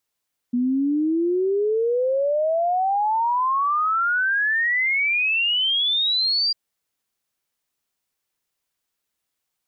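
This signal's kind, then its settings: log sweep 240 Hz -> 4800 Hz 6.00 s -18 dBFS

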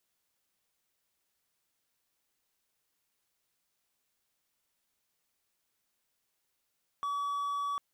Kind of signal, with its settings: tone triangle 1140 Hz -29 dBFS 0.75 s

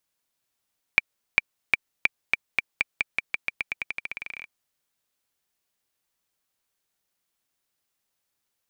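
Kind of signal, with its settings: bouncing ball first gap 0.40 s, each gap 0.89, 2350 Hz, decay 23 ms -2 dBFS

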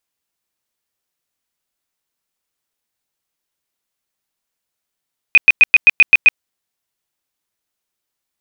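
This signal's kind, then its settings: tone bursts 2490 Hz, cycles 65, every 0.13 s, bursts 8, -2.5 dBFS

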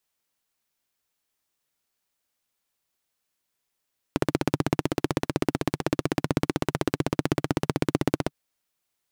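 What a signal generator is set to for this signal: single-cylinder engine model, steady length 4.16 s, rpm 1900, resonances 150/290 Hz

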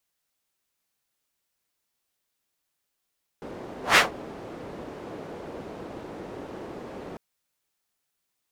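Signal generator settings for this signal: whoosh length 3.75 s, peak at 0.55, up 0.15 s, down 0.15 s, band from 410 Hz, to 1900 Hz, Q 1.1, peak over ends 24 dB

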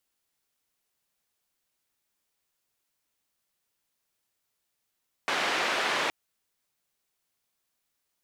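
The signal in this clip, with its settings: noise band 350–2400 Hz, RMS -28 dBFS 0.82 s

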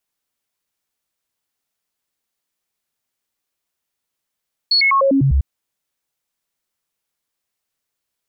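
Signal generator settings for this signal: stepped sine 4370 Hz down, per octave 1, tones 7, 0.10 s, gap 0.00 s -11 dBFS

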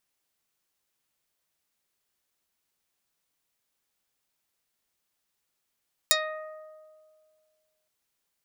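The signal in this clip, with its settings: plucked string D#5, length 1.77 s, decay 2.03 s, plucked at 0.4, dark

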